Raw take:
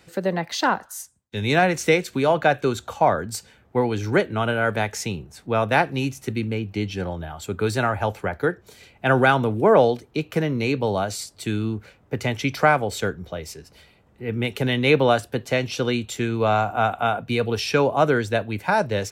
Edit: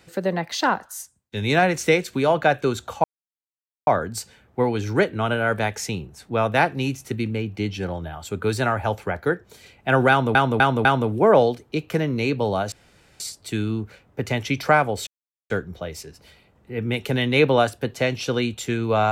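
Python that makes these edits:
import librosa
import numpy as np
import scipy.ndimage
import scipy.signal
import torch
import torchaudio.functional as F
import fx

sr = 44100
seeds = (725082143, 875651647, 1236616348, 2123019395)

y = fx.edit(x, sr, fx.insert_silence(at_s=3.04, length_s=0.83),
    fx.repeat(start_s=9.27, length_s=0.25, count=4),
    fx.insert_room_tone(at_s=11.14, length_s=0.48),
    fx.insert_silence(at_s=13.01, length_s=0.43), tone=tone)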